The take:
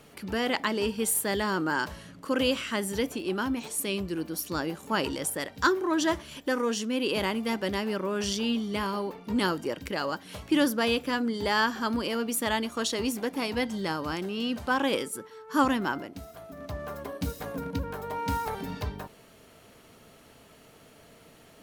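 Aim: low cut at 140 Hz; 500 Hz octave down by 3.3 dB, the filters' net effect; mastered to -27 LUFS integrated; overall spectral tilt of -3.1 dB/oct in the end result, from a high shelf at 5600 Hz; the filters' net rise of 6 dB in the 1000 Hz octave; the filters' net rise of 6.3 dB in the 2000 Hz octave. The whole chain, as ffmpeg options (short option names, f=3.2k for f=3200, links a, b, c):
-af "highpass=140,equalizer=f=500:t=o:g=-6,equalizer=f=1k:t=o:g=7,equalizer=f=2k:t=o:g=5.5,highshelf=f=5.6k:g=4.5,volume=-0.5dB"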